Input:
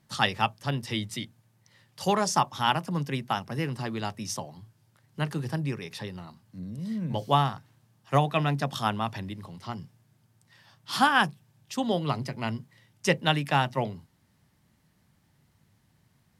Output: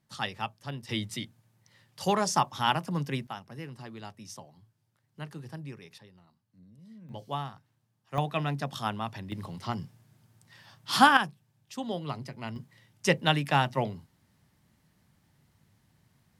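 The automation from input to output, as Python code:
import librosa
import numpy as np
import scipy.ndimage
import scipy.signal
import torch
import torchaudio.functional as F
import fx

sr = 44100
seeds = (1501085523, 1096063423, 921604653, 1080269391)

y = fx.gain(x, sr, db=fx.steps((0.0, -8.5), (0.89, -1.5), (3.27, -11.0), (5.98, -18.0), (7.09, -11.5), (8.18, -4.5), (9.32, 3.0), (11.17, -7.0), (12.56, -0.5)))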